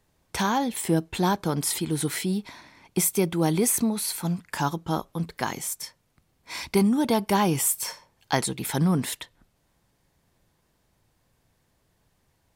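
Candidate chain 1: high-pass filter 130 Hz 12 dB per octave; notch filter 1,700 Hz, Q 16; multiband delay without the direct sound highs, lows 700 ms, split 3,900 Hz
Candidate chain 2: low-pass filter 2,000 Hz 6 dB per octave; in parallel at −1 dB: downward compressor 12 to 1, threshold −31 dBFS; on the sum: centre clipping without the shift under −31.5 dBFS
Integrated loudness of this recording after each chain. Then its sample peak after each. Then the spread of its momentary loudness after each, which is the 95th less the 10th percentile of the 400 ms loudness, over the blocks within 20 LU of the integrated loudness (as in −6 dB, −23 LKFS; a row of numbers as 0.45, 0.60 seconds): −26.5, −25.0 LKFS; −5.5, −9.0 dBFS; 15, 13 LU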